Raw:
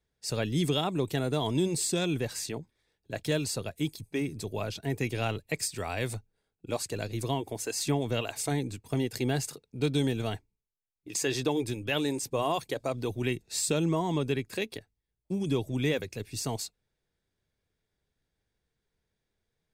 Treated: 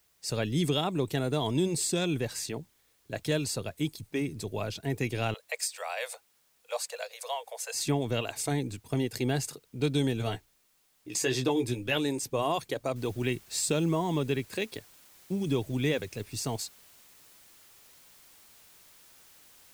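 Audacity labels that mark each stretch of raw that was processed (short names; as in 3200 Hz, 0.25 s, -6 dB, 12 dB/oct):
5.340000	7.740000	steep high-pass 480 Hz 96 dB/oct
10.180000	11.980000	doubler 16 ms -7 dB
12.960000	12.960000	noise floor step -69 dB -57 dB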